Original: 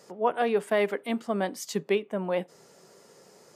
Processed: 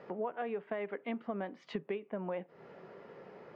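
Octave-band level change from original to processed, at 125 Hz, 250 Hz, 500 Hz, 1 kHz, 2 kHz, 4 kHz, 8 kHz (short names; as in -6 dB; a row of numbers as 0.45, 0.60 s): -9.0 dB, -9.0 dB, -11.0 dB, -11.5 dB, -12.0 dB, -15.5 dB, under -30 dB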